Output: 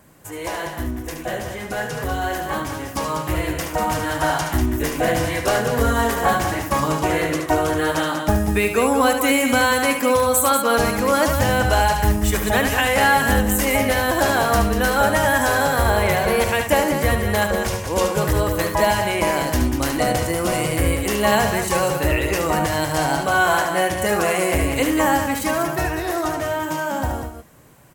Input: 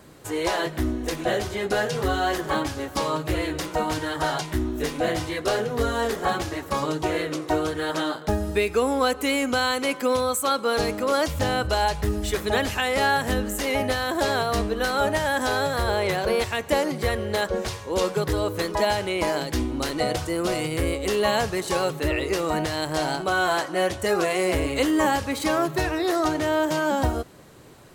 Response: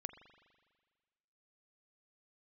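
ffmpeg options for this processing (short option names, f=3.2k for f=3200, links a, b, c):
-filter_complex "[0:a]equalizer=f=400:t=o:w=0.67:g=-7,equalizer=f=4k:t=o:w=0.67:g=-8,equalizer=f=16k:t=o:w=0.67:g=8,asplit=2[a][b];[b]aecho=0:1:72.89|192.4:0.447|0.447[c];[a][c]amix=inputs=2:normalize=0,dynaudnorm=f=540:g=13:m=11.5dB,bandreject=f=1.3k:w=16,volume=-1.5dB"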